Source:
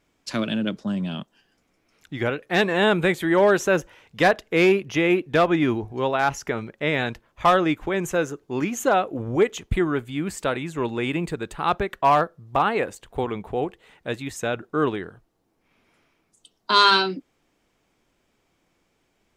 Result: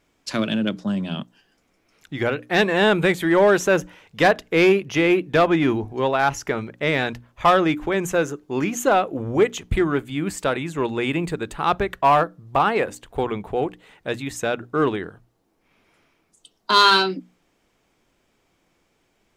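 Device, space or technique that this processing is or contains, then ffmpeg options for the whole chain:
parallel distortion: -filter_complex "[0:a]asplit=2[s0][s1];[s1]asoftclip=type=hard:threshold=0.133,volume=0.355[s2];[s0][s2]amix=inputs=2:normalize=0,bandreject=f=60:t=h:w=6,bandreject=f=120:t=h:w=6,bandreject=f=180:t=h:w=6,bandreject=f=240:t=h:w=6,bandreject=f=300:t=h:w=6"

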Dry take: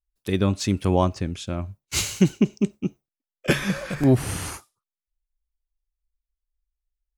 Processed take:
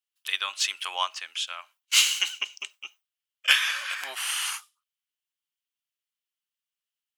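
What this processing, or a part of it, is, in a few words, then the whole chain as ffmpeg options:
headphones lying on a table: -af "highpass=f=1100:w=0.5412,highpass=f=1100:w=1.3066,equalizer=f=3000:t=o:w=0.4:g=11,volume=1.41"

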